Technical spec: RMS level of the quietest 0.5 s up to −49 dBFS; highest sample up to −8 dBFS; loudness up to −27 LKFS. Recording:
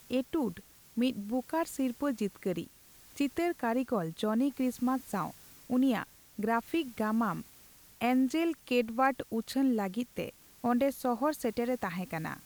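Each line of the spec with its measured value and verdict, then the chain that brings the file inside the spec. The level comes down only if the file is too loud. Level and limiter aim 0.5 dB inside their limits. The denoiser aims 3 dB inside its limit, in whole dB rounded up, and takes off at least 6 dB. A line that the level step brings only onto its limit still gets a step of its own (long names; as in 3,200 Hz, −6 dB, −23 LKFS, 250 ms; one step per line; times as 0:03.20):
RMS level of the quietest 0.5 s −57 dBFS: in spec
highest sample −15.5 dBFS: in spec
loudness −32.5 LKFS: in spec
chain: no processing needed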